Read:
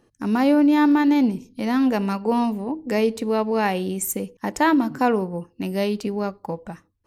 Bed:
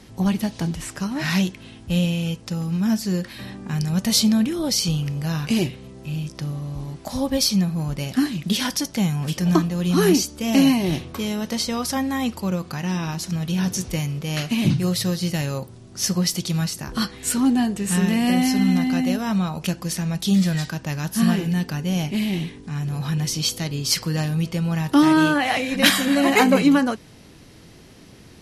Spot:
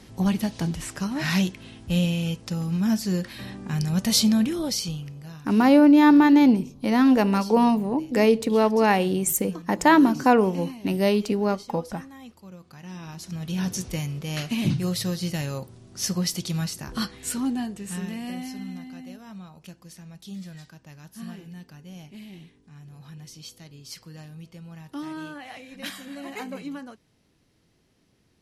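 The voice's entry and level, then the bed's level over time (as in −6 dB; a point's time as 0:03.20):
5.25 s, +2.0 dB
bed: 0:04.55 −2 dB
0:05.53 −20.5 dB
0:12.51 −20.5 dB
0:13.60 −4.5 dB
0:17.04 −4.5 dB
0:18.94 −19.5 dB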